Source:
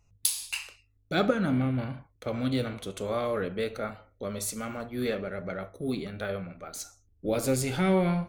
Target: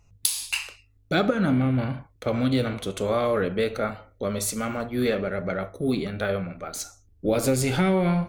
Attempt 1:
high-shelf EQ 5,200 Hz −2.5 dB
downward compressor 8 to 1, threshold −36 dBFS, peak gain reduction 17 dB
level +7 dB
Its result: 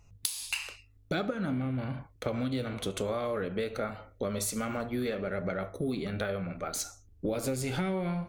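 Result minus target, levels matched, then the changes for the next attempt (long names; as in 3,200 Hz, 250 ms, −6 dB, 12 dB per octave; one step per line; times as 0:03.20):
downward compressor: peak gain reduction +10 dB
change: downward compressor 8 to 1, threshold −24.5 dBFS, peak gain reduction 7 dB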